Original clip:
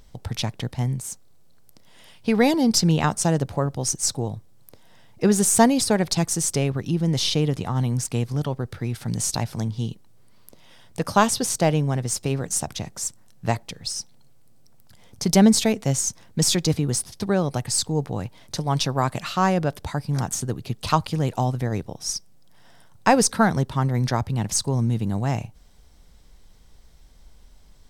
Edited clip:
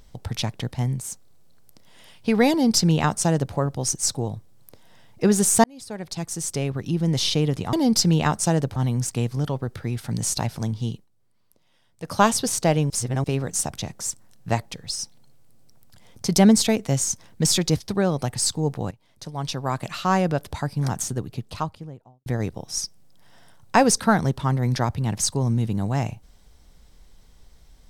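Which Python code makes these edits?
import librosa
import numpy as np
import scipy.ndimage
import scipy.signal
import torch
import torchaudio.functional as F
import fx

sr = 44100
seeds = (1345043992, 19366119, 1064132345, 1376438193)

y = fx.studio_fade_out(x, sr, start_s=20.26, length_s=1.32)
y = fx.edit(y, sr, fx.duplicate(start_s=2.51, length_s=1.03, to_s=7.73),
    fx.fade_in_span(start_s=5.64, length_s=1.42),
    fx.fade_down_up(start_s=9.87, length_s=1.28, db=-14.0, fade_s=0.18),
    fx.reverse_span(start_s=11.87, length_s=0.34),
    fx.cut(start_s=16.75, length_s=0.35),
    fx.fade_in_from(start_s=18.23, length_s=1.28, floor_db=-18.5), tone=tone)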